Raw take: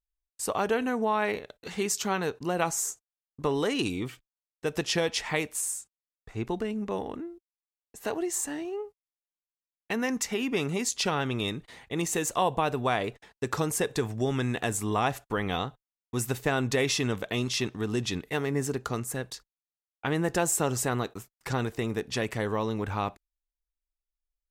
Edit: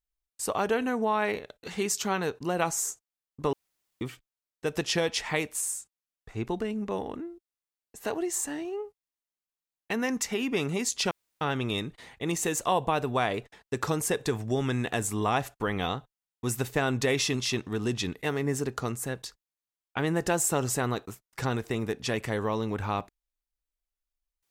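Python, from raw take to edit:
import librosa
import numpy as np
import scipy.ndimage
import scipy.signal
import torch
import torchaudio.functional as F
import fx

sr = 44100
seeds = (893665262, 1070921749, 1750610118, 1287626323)

y = fx.edit(x, sr, fx.room_tone_fill(start_s=3.53, length_s=0.48),
    fx.insert_room_tone(at_s=11.11, length_s=0.3),
    fx.cut(start_s=17.04, length_s=0.38), tone=tone)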